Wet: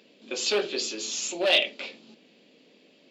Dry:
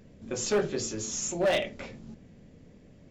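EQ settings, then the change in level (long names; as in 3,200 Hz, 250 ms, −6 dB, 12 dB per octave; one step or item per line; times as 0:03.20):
high-pass filter 270 Hz 24 dB per octave
flat-topped bell 3,400 Hz +13 dB 1.2 octaves
0.0 dB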